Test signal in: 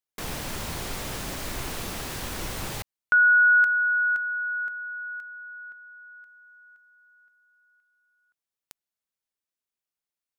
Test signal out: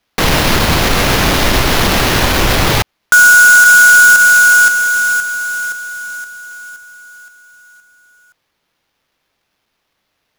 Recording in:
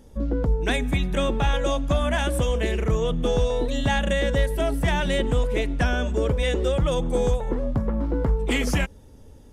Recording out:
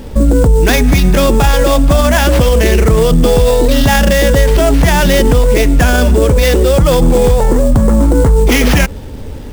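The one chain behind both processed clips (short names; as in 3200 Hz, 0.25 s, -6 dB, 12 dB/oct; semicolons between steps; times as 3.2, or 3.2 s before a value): sample-rate reducer 8400 Hz, jitter 20%; maximiser +23 dB; gain -1 dB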